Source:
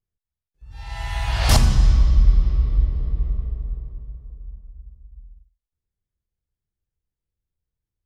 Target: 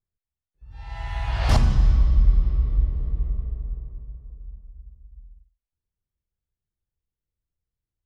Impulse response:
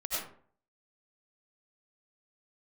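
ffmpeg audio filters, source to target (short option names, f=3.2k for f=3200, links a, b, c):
-af "aemphasis=mode=reproduction:type=75kf,volume=-2.5dB"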